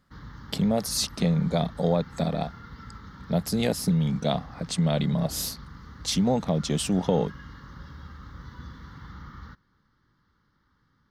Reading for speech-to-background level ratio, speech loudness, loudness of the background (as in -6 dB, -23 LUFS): 18.5 dB, -26.5 LUFS, -45.0 LUFS